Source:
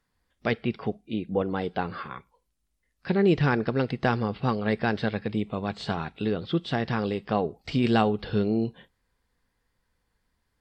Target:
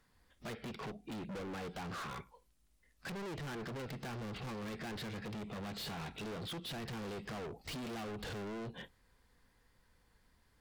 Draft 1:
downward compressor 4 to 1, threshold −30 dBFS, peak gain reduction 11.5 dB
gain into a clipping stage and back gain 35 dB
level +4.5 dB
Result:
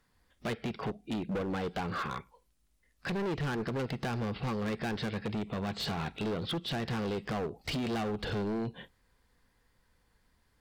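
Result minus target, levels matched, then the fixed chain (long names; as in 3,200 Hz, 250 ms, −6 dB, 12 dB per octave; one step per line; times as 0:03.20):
gain into a clipping stage and back: distortion −4 dB
downward compressor 4 to 1, threshold −30 dBFS, peak gain reduction 11.5 dB
gain into a clipping stage and back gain 46 dB
level +4.5 dB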